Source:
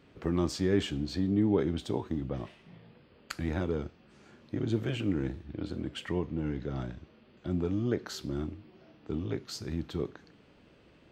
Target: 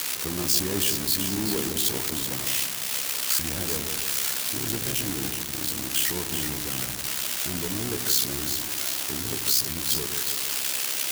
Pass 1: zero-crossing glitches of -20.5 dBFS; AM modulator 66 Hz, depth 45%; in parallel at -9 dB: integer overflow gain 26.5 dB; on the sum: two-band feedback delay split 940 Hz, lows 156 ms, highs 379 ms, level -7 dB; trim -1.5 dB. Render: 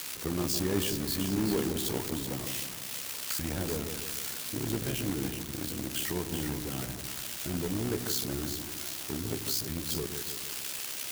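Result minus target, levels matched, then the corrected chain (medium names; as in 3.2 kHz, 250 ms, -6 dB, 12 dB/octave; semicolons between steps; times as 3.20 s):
zero-crossing glitches: distortion -10 dB
zero-crossing glitches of -10.5 dBFS; AM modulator 66 Hz, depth 45%; in parallel at -9 dB: integer overflow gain 26.5 dB; on the sum: two-band feedback delay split 940 Hz, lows 156 ms, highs 379 ms, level -7 dB; trim -1.5 dB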